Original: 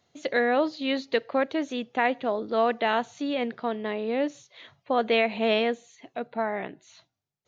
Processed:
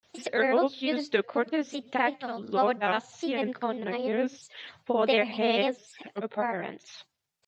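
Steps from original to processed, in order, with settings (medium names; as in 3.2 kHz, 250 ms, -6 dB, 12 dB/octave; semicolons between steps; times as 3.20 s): time-frequency box 2.16–2.45 s, 230–1200 Hz -9 dB; granulator 100 ms, grains 20 per s, spray 39 ms, pitch spread up and down by 3 st; tape noise reduction on one side only encoder only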